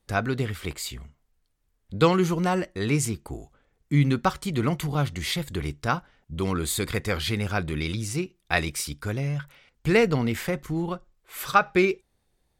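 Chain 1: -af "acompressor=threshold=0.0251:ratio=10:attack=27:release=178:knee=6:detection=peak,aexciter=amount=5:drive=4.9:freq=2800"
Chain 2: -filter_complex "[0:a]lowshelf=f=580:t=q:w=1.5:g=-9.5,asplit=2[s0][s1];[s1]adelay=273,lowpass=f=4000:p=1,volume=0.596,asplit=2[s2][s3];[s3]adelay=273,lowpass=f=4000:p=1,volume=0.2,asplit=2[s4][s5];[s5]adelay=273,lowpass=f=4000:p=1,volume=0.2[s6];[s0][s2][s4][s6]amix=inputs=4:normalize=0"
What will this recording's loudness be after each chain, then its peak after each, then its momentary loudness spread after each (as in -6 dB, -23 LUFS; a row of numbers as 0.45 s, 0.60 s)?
-25.5 LUFS, -28.5 LUFS; -5.0 dBFS, -2.5 dBFS; 17 LU, 12 LU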